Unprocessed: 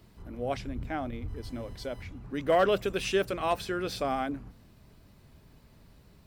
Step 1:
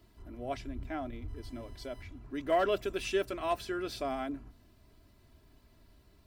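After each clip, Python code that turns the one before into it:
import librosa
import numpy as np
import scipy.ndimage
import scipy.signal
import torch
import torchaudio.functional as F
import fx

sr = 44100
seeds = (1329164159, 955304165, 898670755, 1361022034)

y = x + 0.56 * np.pad(x, (int(3.0 * sr / 1000.0), 0))[:len(x)]
y = F.gain(torch.from_numpy(y), -6.0).numpy()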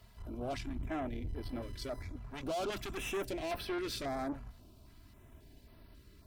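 y = fx.tube_stage(x, sr, drive_db=39.0, bias=0.45)
y = fx.filter_held_notch(y, sr, hz=3.7, low_hz=320.0, high_hz=7000.0)
y = F.gain(torch.from_numpy(y), 6.0).numpy()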